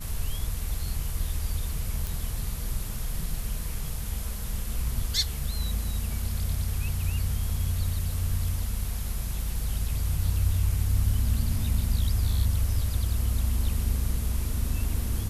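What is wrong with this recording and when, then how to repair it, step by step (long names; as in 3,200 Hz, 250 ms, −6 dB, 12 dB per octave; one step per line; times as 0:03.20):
0:02.07: click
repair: click removal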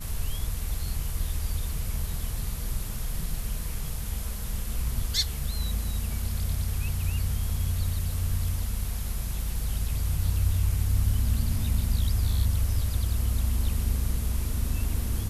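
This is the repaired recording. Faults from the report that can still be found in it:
none of them is left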